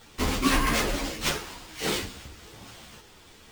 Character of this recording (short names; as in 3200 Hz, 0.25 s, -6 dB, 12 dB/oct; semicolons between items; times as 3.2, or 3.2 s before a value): aliases and images of a low sample rate 12000 Hz, jitter 0%; a shimmering, thickened sound